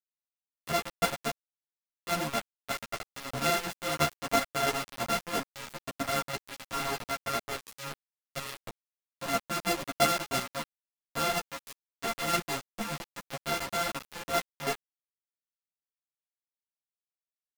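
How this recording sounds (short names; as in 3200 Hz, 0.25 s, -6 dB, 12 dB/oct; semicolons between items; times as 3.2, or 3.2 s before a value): a buzz of ramps at a fixed pitch in blocks of 64 samples; chopped level 3 Hz, depth 60%, duty 15%; a quantiser's noise floor 6-bit, dither none; a shimmering, thickened sound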